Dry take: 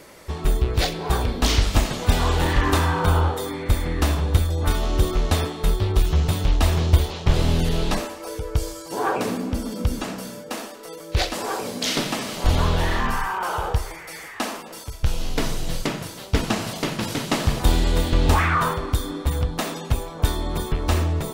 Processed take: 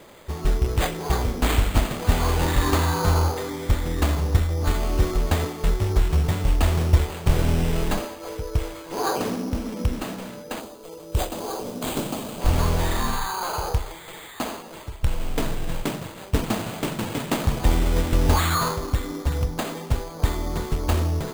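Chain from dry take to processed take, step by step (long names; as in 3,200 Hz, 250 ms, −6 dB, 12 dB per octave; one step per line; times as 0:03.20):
bad sample-rate conversion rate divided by 8×, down none, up hold
parametric band 1,900 Hz −2.5 dB 1.2 octaves, from 0:10.60 −13.5 dB, from 0:12.41 −4 dB
level −1 dB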